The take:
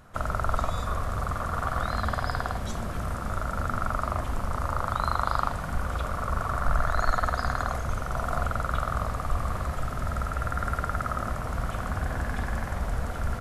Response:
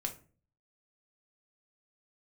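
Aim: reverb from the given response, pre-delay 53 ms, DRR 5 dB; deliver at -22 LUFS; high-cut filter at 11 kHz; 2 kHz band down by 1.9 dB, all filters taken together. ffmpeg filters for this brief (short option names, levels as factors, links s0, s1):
-filter_complex "[0:a]lowpass=11000,equalizer=f=2000:t=o:g=-3,asplit=2[s0][s1];[1:a]atrim=start_sample=2205,adelay=53[s2];[s1][s2]afir=irnorm=-1:irlink=0,volume=0.531[s3];[s0][s3]amix=inputs=2:normalize=0,volume=2.37"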